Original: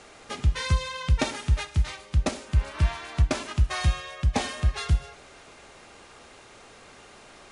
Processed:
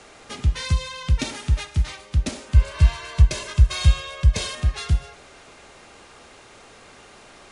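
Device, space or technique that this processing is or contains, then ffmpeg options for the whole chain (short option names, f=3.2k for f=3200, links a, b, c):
one-band saturation: -filter_complex "[0:a]asettb=1/sr,asplit=3[a][b][c];[a]atrim=end=2.544[d];[b]atrim=start=2.54:end=4.55,asetpts=PTS-STARTPTS,afade=t=in:d=0.004:c=qsin,afade=t=out:st=2.006:d=0.004:c=qsin,aecho=1:1:1.9:0.97,atrim=end_sample=88641[e];[c]atrim=start=4.546[f];[d][e]acrossfade=d=0.004:c1=hsin:c2=qsin[g];[g][f]acrossfade=d=0.004:c1=qsin:c2=hsin,acrossover=split=330|2300[h][i][j];[i]asoftclip=type=tanh:threshold=-38dB[k];[h][k][j]amix=inputs=3:normalize=0,volume=2.5dB"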